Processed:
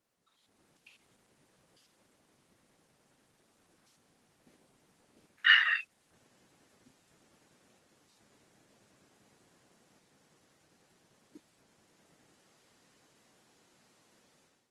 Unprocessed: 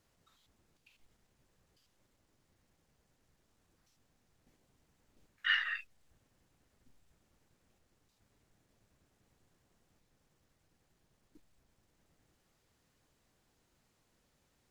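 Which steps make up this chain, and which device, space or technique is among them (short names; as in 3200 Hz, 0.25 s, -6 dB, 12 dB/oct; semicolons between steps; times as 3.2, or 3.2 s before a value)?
video call (HPF 180 Hz 12 dB/oct; AGC gain up to 14.5 dB; gain -4.5 dB; Opus 24 kbps 48000 Hz)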